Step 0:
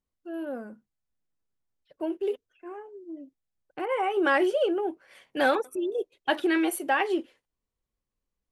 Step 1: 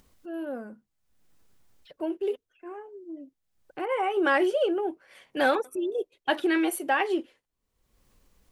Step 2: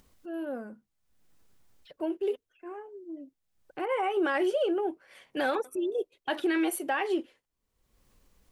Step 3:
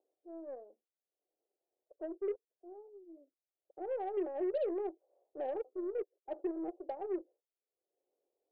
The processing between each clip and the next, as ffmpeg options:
ffmpeg -i in.wav -af "acompressor=mode=upward:threshold=-43dB:ratio=2.5" out.wav
ffmpeg -i in.wav -af "alimiter=limit=-19dB:level=0:latency=1:release=57,volume=-1dB" out.wav
ffmpeg -i in.wav -af "asuperpass=centerf=510:order=8:qfactor=1.2,aeval=exprs='0.1*(cos(1*acos(clip(val(0)/0.1,-1,1)))-cos(1*PI/2))+0.00316*(cos(7*acos(clip(val(0)/0.1,-1,1)))-cos(7*PI/2))+0.00126*(cos(8*acos(clip(val(0)/0.1,-1,1)))-cos(8*PI/2))':channel_layout=same,volume=-6.5dB" out.wav

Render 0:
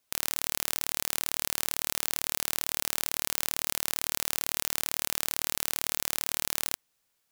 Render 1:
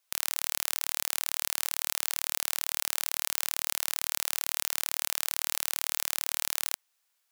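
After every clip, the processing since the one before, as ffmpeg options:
ffmpeg -i in.wav -af "highpass=740" out.wav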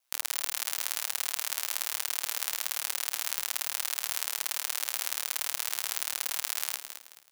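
ffmpeg -i in.wav -filter_complex "[0:a]flanger=delay=16.5:depth=3.7:speed=1.2,aeval=exprs='val(0)*sin(2*PI*65*n/s)':channel_layout=same,asplit=5[link_01][link_02][link_03][link_04][link_05];[link_02]adelay=215,afreqshift=-80,volume=-9.5dB[link_06];[link_03]adelay=430,afreqshift=-160,volume=-19.1dB[link_07];[link_04]adelay=645,afreqshift=-240,volume=-28.8dB[link_08];[link_05]adelay=860,afreqshift=-320,volume=-38.4dB[link_09];[link_01][link_06][link_07][link_08][link_09]amix=inputs=5:normalize=0,volume=5dB" out.wav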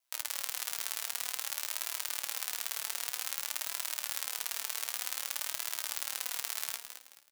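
ffmpeg -i in.wav -filter_complex "[0:a]flanger=delay=2.9:depth=1.7:regen=61:speed=0.53:shape=triangular,asplit=2[link_01][link_02];[link_02]adelay=16,volume=-14dB[link_03];[link_01][link_03]amix=inputs=2:normalize=0" out.wav

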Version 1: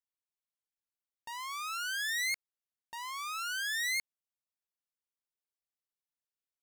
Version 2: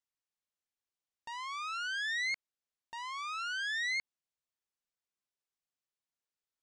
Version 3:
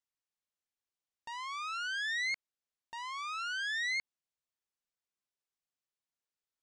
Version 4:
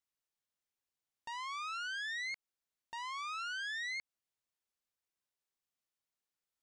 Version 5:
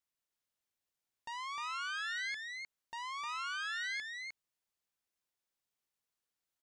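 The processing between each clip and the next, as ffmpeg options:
ffmpeg -i in.wav -filter_complex "[0:a]acrossover=split=4800[link_01][link_02];[link_02]acompressor=threshold=-52dB:ratio=4:attack=1:release=60[link_03];[link_01][link_03]amix=inputs=2:normalize=0,lowpass=frequency=8400:width=0.5412,lowpass=frequency=8400:width=1.3066" out.wav
ffmpeg -i in.wav -af anull out.wav
ffmpeg -i in.wav -af "acompressor=threshold=-38dB:ratio=6" out.wav
ffmpeg -i in.wav -af "aecho=1:1:306:0.596" out.wav

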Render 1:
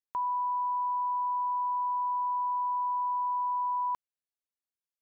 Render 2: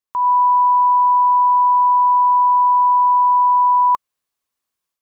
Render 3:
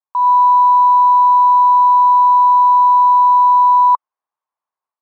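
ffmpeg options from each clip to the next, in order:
ffmpeg -i in.wav -af "equalizer=frequency=1100:width_type=o:width=0.23:gain=9,dynaudnorm=framelen=140:gausssize=3:maxgain=9.5dB,volume=4dB" out.wav
ffmpeg -i in.wav -filter_complex "[0:a]asplit=2[link_01][link_02];[link_02]acrusher=samples=9:mix=1:aa=0.000001,volume=-8.5dB[link_03];[link_01][link_03]amix=inputs=2:normalize=0,bandpass=frequency=920:width_type=q:width=3:csg=0,volume=2dB" out.wav

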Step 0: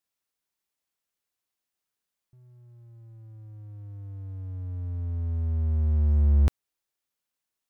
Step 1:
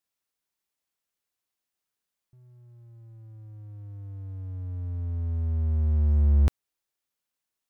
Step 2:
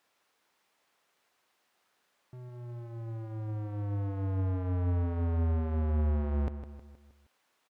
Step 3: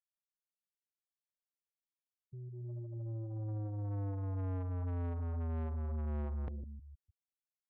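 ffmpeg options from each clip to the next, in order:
ffmpeg -i in.wav -af anull out.wav
ffmpeg -i in.wav -filter_complex "[0:a]acompressor=threshold=-31dB:ratio=4,asplit=2[link_01][link_02];[link_02]highpass=frequency=720:poles=1,volume=27dB,asoftclip=type=tanh:threshold=-25.5dB[link_03];[link_01][link_03]amix=inputs=2:normalize=0,lowpass=frequency=1100:poles=1,volume=-6dB,asplit=2[link_04][link_05];[link_05]aecho=0:1:157|314|471|628|785:0.282|0.138|0.0677|0.0332|0.0162[link_06];[link_04][link_06]amix=inputs=2:normalize=0,volume=2.5dB" out.wav
ffmpeg -i in.wav -af "highshelf=frequency=2200:gain=9.5,afftfilt=real='re*gte(hypot(re,im),0.0178)':imag='im*gte(hypot(re,im),0.0178)':win_size=1024:overlap=0.75,asoftclip=type=tanh:threshold=-35dB" out.wav

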